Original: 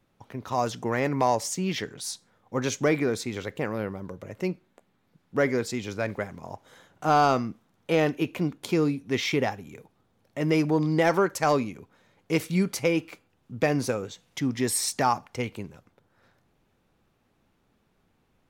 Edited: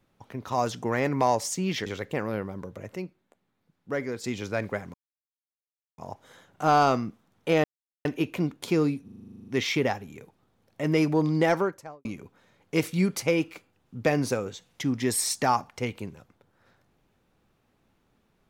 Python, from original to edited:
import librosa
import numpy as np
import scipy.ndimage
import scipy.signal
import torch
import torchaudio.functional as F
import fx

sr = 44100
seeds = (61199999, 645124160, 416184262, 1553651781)

y = fx.studio_fade_out(x, sr, start_s=10.96, length_s=0.66)
y = fx.edit(y, sr, fx.cut(start_s=1.86, length_s=1.46),
    fx.clip_gain(start_s=4.42, length_s=1.28, db=-6.5),
    fx.insert_silence(at_s=6.4, length_s=1.04),
    fx.insert_silence(at_s=8.06, length_s=0.41),
    fx.stutter(start_s=9.05, slice_s=0.04, count=12), tone=tone)